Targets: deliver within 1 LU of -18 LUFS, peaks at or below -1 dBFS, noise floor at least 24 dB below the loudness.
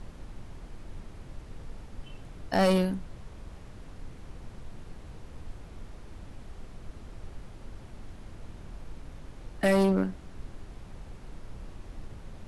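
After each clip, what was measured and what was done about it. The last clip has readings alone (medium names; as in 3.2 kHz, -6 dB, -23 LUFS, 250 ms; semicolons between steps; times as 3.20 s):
clipped samples 0.4%; clipping level -18.0 dBFS; noise floor -47 dBFS; noise floor target -51 dBFS; loudness -26.5 LUFS; peak level -18.0 dBFS; loudness target -18.0 LUFS
-> clip repair -18 dBFS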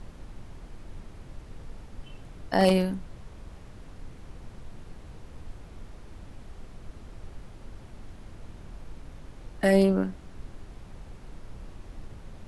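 clipped samples 0.0%; noise floor -47 dBFS; noise floor target -49 dBFS
-> noise print and reduce 6 dB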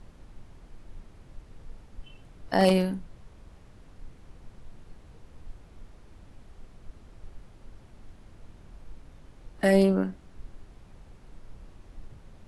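noise floor -53 dBFS; loudness -24.5 LUFS; peak level -9.0 dBFS; loudness target -18.0 LUFS
-> trim +6.5 dB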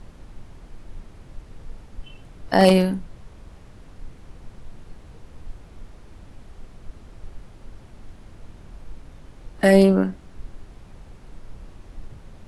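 loudness -18.0 LUFS; peak level -2.5 dBFS; noise floor -47 dBFS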